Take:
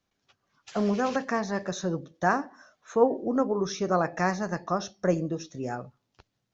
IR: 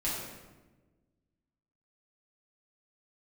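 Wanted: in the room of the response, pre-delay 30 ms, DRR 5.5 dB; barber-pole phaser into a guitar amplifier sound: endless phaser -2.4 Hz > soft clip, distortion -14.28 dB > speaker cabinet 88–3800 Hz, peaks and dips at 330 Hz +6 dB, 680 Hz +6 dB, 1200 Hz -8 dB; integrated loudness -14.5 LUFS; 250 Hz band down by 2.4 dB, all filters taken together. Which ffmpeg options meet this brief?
-filter_complex "[0:a]equalizer=f=250:t=o:g=-6,asplit=2[a][b];[1:a]atrim=start_sample=2205,adelay=30[c];[b][c]afir=irnorm=-1:irlink=0,volume=-11.5dB[d];[a][d]amix=inputs=2:normalize=0,asplit=2[e][f];[f]afreqshift=-2.4[g];[e][g]amix=inputs=2:normalize=1,asoftclip=threshold=-23.5dB,highpass=88,equalizer=f=330:t=q:w=4:g=6,equalizer=f=680:t=q:w=4:g=6,equalizer=f=1.2k:t=q:w=4:g=-8,lowpass=f=3.8k:w=0.5412,lowpass=f=3.8k:w=1.3066,volume=17.5dB"

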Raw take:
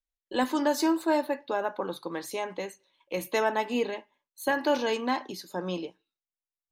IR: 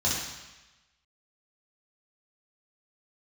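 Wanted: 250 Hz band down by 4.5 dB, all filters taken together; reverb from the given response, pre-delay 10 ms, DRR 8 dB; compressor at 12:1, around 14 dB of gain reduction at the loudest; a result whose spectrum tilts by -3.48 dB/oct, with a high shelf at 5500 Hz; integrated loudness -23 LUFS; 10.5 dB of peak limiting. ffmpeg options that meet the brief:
-filter_complex "[0:a]equalizer=f=250:t=o:g=-6,highshelf=f=5.5k:g=-5,acompressor=threshold=-36dB:ratio=12,alimiter=level_in=11.5dB:limit=-24dB:level=0:latency=1,volume=-11.5dB,asplit=2[a][b];[1:a]atrim=start_sample=2205,adelay=10[c];[b][c]afir=irnorm=-1:irlink=0,volume=-19dB[d];[a][d]amix=inputs=2:normalize=0,volume=22dB"

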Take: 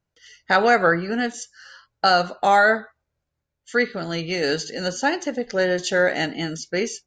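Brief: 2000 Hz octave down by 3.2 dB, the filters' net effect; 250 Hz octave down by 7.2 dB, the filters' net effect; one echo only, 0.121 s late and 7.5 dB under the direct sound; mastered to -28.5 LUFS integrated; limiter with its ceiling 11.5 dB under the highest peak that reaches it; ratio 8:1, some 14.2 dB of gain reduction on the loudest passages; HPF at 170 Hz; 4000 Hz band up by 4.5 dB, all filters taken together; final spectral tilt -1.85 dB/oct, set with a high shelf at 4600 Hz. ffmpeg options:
-af "highpass=170,equalizer=f=250:t=o:g=-9,equalizer=f=2k:t=o:g=-6,equalizer=f=4k:t=o:g=3.5,highshelf=f=4.6k:g=6.5,acompressor=threshold=-28dB:ratio=8,alimiter=level_in=0.5dB:limit=-24dB:level=0:latency=1,volume=-0.5dB,aecho=1:1:121:0.422,volume=5.5dB"

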